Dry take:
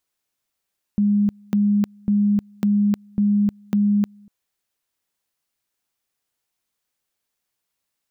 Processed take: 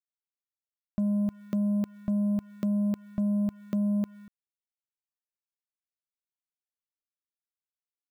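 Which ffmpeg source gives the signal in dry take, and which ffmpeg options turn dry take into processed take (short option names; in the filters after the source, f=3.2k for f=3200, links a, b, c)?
-f lavfi -i "aevalsrc='pow(10,(-14.5-30*gte(mod(t,0.55),0.31))/20)*sin(2*PI*205*t)':d=3.3:s=44100"
-af "acompressor=threshold=-22dB:ratio=4,acrusher=bits=8:mix=0:aa=0.5,asoftclip=type=tanh:threshold=-23dB"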